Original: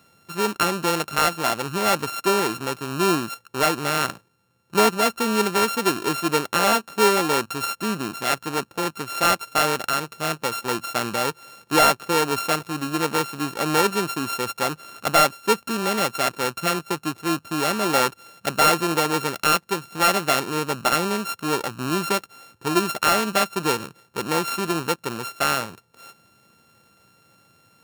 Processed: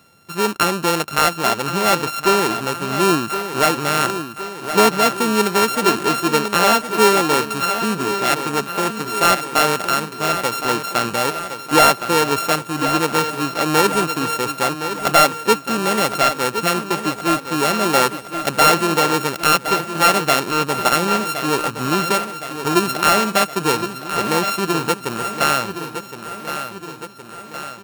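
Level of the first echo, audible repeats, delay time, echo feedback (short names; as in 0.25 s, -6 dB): -10.0 dB, 6, 1.066 s, 57%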